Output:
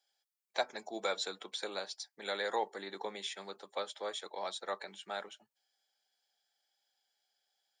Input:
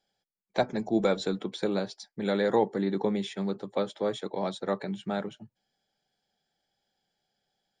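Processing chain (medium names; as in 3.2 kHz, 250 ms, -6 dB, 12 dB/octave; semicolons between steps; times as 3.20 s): high-pass 750 Hz 12 dB/octave; treble shelf 4.1 kHz +7.5 dB; trim -3.5 dB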